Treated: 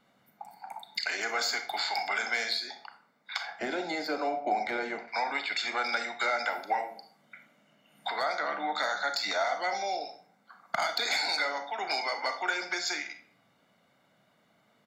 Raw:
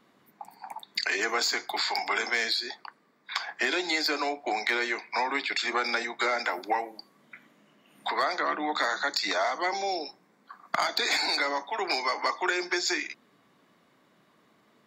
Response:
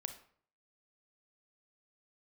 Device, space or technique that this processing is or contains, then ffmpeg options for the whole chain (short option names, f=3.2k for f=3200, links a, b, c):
microphone above a desk: -filter_complex "[0:a]aecho=1:1:1.4:0.53[a];[1:a]atrim=start_sample=2205[b];[a][b]afir=irnorm=-1:irlink=0,asettb=1/sr,asplit=3[c][d][e];[c]atrim=end=3.594[f];[d]atrim=start=3.59:end=5.08,asetpts=PTS-STARTPTS,afade=t=in:d=0.004:c=qsin,afade=t=out:st=1.486:d=0.004:c=qsin,tiltshelf=f=970:g=9.5[g];[e]atrim=start=5.076[h];[f][g]acrossfade=d=0.004:c1=hsin:c2=qsin[i];[i][h]acrossfade=d=0.004:c1=qsin:c2=hsin,volume=-1.5dB"